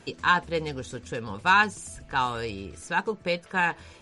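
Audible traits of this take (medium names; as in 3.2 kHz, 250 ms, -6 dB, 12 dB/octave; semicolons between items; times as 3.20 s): noise floor -52 dBFS; spectral tilt -4.0 dB/octave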